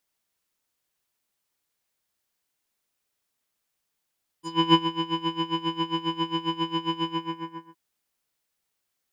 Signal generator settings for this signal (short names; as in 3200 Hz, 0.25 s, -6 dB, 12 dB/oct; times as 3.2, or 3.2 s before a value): synth patch with tremolo E4, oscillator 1 triangle, oscillator 2 square, interval +19 st, detune 20 cents, oscillator 2 level -6 dB, sub -11 dB, noise -28 dB, filter lowpass, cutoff 1700 Hz, Q 2.5, filter envelope 2.5 oct, filter decay 0.11 s, filter sustain 30%, attack 0.313 s, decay 0.10 s, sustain -10.5 dB, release 0.70 s, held 2.62 s, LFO 7.4 Hz, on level 18 dB